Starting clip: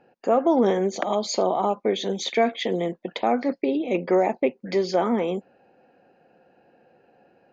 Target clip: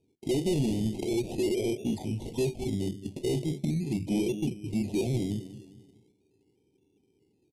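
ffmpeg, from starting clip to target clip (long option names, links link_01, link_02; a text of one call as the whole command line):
ffmpeg -i in.wav -filter_complex "[0:a]asplit=2[link_01][link_02];[link_02]adelay=212,lowpass=frequency=1600:poles=1,volume=-14.5dB,asplit=2[link_03][link_04];[link_04]adelay=212,lowpass=frequency=1600:poles=1,volume=0.39,asplit=2[link_05][link_06];[link_06]adelay=212,lowpass=frequency=1600:poles=1,volume=0.39,asplit=2[link_07][link_08];[link_08]adelay=212,lowpass=frequency=1600:poles=1,volume=0.39[link_09];[link_01][link_03][link_05][link_07][link_09]amix=inputs=5:normalize=0,flanger=delay=7.1:depth=9.5:regen=-67:speed=1.6:shape=sinusoidal,agate=range=-7dB:threshold=-60dB:ratio=16:detection=peak,equalizer=frequency=650:width_type=o:width=0.25:gain=11.5,acrusher=samples=12:mix=1:aa=0.000001:lfo=1:lforange=7.2:lforate=0.4,asoftclip=type=tanh:threshold=-20dB,asetrate=24750,aresample=44100,atempo=1.7818,asuperstop=centerf=1400:order=8:qfactor=1,lowshelf=frequency=240:gain=8.5,volume=-5.5dB" out.wav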